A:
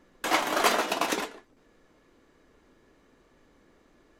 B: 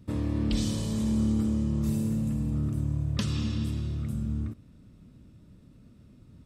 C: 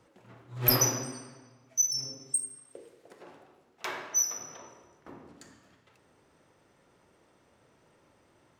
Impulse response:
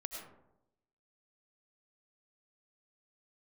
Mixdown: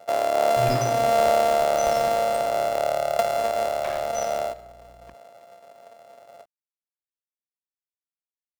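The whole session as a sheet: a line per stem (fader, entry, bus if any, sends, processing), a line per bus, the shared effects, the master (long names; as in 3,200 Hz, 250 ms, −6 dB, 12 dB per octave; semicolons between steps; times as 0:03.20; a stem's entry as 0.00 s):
−9.5 dB, 0.95 s, no send, downward compressor, threshold −29 dBFS, peak gain reduction 11.5 dB; sample-rate reduction 2,700 Hz; mains hum 60 Hz, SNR 13 dB
0.0 dB, 0.00 s, send −11.5 dB, samples sorted by size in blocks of 64 samples; high-pass with resonance 640 Hz, resonance Q 4.9
−2.5 dB, 0.00 s, no send, bit-depth reduction 6 bits, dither none; low-pass filter 3,800 Hz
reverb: on, RT60 0.85 s, pre-delay 60 ms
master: low-shelf EQ 210 Hz +9.5 dB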